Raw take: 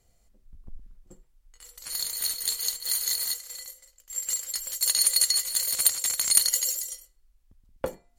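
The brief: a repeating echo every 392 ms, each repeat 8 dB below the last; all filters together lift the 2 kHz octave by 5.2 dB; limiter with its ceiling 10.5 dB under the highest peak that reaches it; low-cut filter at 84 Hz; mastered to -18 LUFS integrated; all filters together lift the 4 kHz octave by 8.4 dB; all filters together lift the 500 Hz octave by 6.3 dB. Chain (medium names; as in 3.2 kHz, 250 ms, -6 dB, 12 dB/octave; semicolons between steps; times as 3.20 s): high-pass 84 Hz; peaking EQ 500 Hz +6.5 dB; peaking EQ 2 kHz +3.5 dB; peaking EQ 4 kHz +8.5 dB; peak limiter -9.5 dBFS; feedback delay 392 ms, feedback 40%, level -8 dB; trim +4 dB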